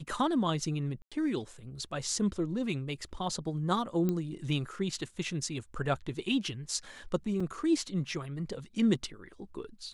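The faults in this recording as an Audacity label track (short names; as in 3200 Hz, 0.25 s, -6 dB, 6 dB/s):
1.020000	1.120000	gap 96 ms
4.090000	4.090000	pop -19 dBFS
7.400000	7.400000	gap 3.9 ms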